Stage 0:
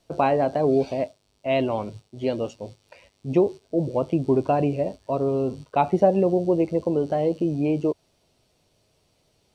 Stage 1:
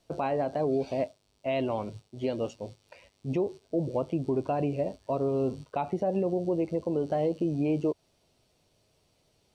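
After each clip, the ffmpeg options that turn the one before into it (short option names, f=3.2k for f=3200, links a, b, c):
-af "alimiter=limit=-16dB:level=0:latency=1:release=178,volume=-3dB"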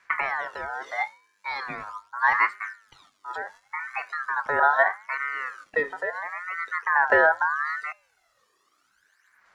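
-af "aphaser=in_gain=1:out_gain=1:delay=1.5:decay=0.78:speed=0.42:type=sinusoidal,bandreject=f=212.8:t=h:w=4,bandreject=f=425.6:t=h:w=4,bandreject=f=638.4:t=h:w=4,bandreject=f=851.2:t=h:w=4,bandreject=f=1.064k:t=h:w=4,bandreject=f=1.2768k:t=h:w=4,bandreject=f=1.4896k:t=h:w=4,bandreject=f=1.7024k:t=h:w=4,bandreject=f=1.9152k:t=h:w=4,bandreject=f=2.128k:t=h:w=4,bandreject=f=2.3408k:t=h:w=4,bandreject=f=2.5536k:t=h:w=4,bandreject=f=2.7664k:t=h:w=4,bandreject=f=2.9792k:t=h:w=4,bandreject=f=3.192k:t=h:w=4,bandreject=f=3.4048k:t=h:w=4,bandreject=f=3.6176k:t=h:w=4,bandreject=f=3.8304k:t=h:w=4,bandreject=f=4.0432k:t=h:w=4,bandreject=f=4.256k:t=h:w=4,bandreject=f=4.4688k:t=h:w=4,bandreject=f=4.6816k:t=h:w=4,bandreject=f=4.8944k:t=h:w=4,bandreject=f=5.1072k:t=h:w=4,bandreject=f=5.32k:t=h:w=4,bandreject=f=5.5328k:t=h:w=4,bandreject=f=5.7456k:t=h:w=4,bandreject=f=5.9584k:t=h:w=4,bandreject=f=6.1712k:t=h:w=4,bandreject=f=6.384k:t=h:w=4,bandreject=f=6.5968k:t=h:w=4,bandreject=f=6.8096k:t=h:w=4,aeval=exprs='val(0)*sin(2*PI*1400*n/s+1400*0.2/0.76*sin(2*PI*0.76*n/s))':c=same"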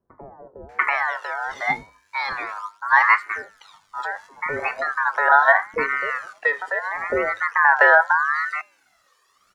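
-filter_complex "[0:a]acrossover=split=490[a][b];[b]adelay=690[c];[a][c]amix=inputs=2:normalize=0,volume=6dB"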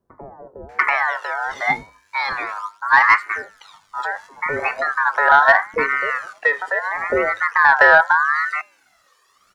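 -af "asoftclip=type=tanh:threshold=-3.5dB,volume=3.5dB"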